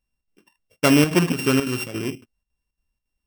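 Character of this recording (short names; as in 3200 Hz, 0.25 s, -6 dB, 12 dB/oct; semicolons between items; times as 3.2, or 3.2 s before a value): a buzz of ramps at a fixed pitch in blocks of 16 samples; chopped level 3.6 Hz, depth 60%, duty 75%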